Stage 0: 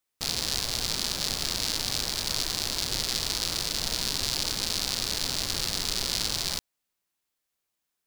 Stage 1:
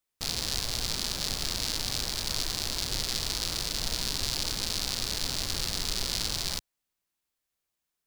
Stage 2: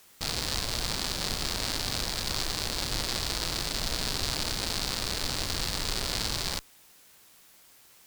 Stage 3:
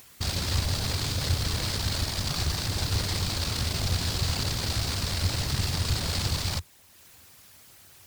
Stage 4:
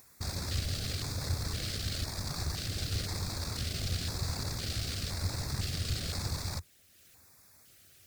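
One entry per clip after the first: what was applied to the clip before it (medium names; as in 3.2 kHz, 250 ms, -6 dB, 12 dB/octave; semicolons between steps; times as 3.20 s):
bass shelf 94 Hz +6.5 dB; trim -2.5 dB
in parallel at -7.5 dB: word length cut 8-bit, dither triangular; on the sum: one-sided clip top -25 dBFS; trim -1 dB
whisper effect; peaking EQ 87 Hz +14 dB 1.1 oct; upward compressor, threshold -46 dBFS
LFO notch square 0.98 Hz 940–3000 Hz; trim -6.5 dB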